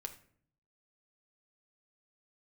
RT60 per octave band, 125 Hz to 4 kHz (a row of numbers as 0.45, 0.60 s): 0.95, 0.85, 0.60, 0.50, 0.50, 0.35 s